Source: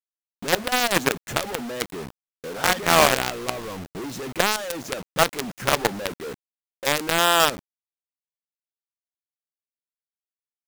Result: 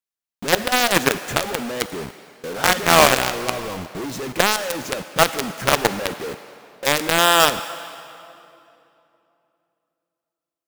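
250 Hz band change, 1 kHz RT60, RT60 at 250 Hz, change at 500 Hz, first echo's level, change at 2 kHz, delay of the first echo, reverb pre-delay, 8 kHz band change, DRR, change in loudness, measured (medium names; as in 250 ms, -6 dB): +3.5 dB, 2.7 s, 3.4 s, +3.5 dB, no echo, +4.0 dB, no echo, 39 ms, +4.0 dB, 12.0 dB, +3.5 dB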